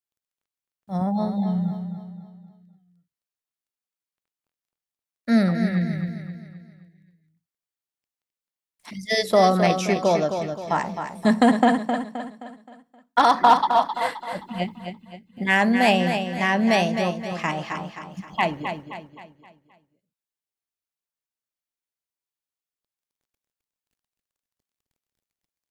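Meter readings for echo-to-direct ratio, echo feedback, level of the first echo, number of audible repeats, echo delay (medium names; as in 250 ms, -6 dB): -6.5 dB, 43%, -7.5 dB, 4, 262 ms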